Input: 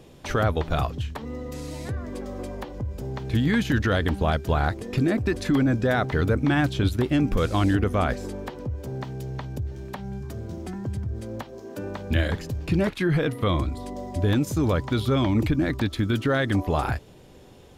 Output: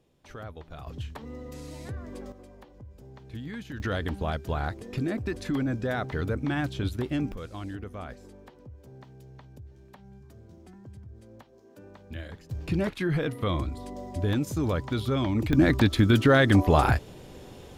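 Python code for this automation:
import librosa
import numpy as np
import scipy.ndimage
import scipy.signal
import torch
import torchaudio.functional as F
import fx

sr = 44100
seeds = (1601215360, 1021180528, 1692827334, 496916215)

y = fx.gain(x, sr, db=fx.steps((0.0, -18.5), (0.87, -6.5), (2.32, -16.0), (3.8, -7.0), (7.32, -16.0), (12.51, -4.5), (15.53, 4.0)))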